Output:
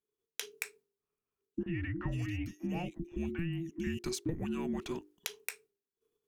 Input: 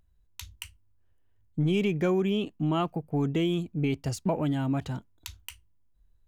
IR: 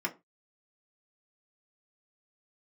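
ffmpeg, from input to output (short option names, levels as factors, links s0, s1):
-filter_complex "[0:a]bandreject=f=2600:w=27,agate=range=0.0224:threshold=0.00178:ratio=3:detection=peak,highpass=79,lowshelf=f=470:g=-6.5,bandreject=f=50:t=h:w=6,bandreject=f=100:t=h:w=6,bandreject=f=150:t=h:w=6,bandreject=f=200:t=h:w=6,acompressor=threshold=0.0126:ratio=6,afreqshift=-500,asettb=1/sr,asplit=3[s0][s1][s2];[s0]atrim=end=1.634[s3];[s1]atrim=start=1.63:end=3.99,asetpts=PTS-STARTPTS,afade=t=in:d=0.004:c=qsin,afade=t=out:st=2.356:d=0.004:c=qsin,acrossover=split=510|2700[s4][s5][s6];[s4]adelay=30[s7];[s6]adelay=450[s8];[s7][s5][s8]amix=inputs=3:normalize=0,atrim=end_sample=104076[s9];[s2]atrim=start=3.986[s10];[s3][s9]acrossfade=d=0.004:c1=hsin:c2=qsin[s11];[s11][s10]acrossfade=d=0.004:c1=qsin:c2=hsin,volume=1.88"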